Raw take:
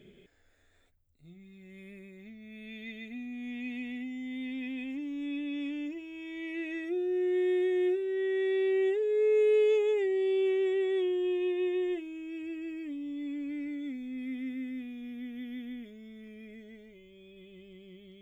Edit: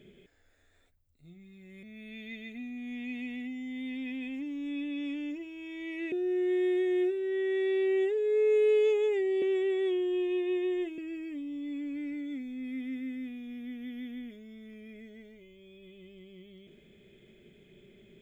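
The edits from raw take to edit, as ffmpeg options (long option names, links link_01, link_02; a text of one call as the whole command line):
ffmpeg -i in.wav -filter_complex "[0:a]asplit=5[link_01][link_02][link_03][link_04][link_05];[link_01]atrim=end=1.832[link_06];[link_02]atrim=start=2.388:end=6.682[link_07];[link_03]atrim=start=6.968:end=10.272[link_08];[link_04]atrim=start=10.528:end=12.092[link_09];[link_05]atrim=start=12.518[link_10];[link_06][link_07]acrossfade=duration=0.004:curve1=hsin:curve2=hsin[link_11];[link_11][link_08]acrossfade=duration=0.004:curve1=hsin:curve2=hsin[link_12];[link_12][link_09]acrossfade=duration=0.004:curve1=hsin:curve2=hsin[link_13];[link_13][link_10]acrossfade=duration=0.004:curve1=hsin:curve2=hsin" out.wav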